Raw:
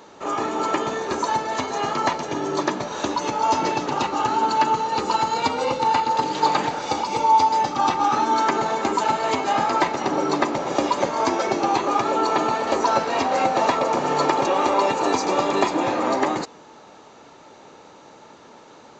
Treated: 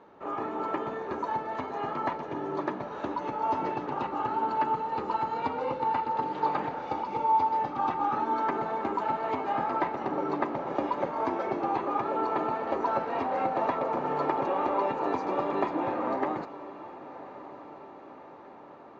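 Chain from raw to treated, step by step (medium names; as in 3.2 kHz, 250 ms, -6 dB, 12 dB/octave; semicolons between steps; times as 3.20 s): low-pass 1.8 kHz 12 dB/octave; on a send: echo that smears into a reverb 1135 ms, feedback 59%, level -16 dB; on the sum: trim -8 dB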